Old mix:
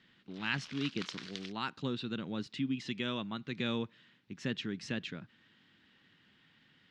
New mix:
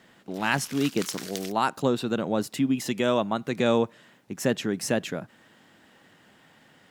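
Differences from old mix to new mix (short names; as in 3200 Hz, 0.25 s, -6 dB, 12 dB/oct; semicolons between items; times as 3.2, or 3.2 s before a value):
speech: add bell 660 Hz +15 dB 1.4 oct; master: remove ladder low-pass 4800 Hz, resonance 30%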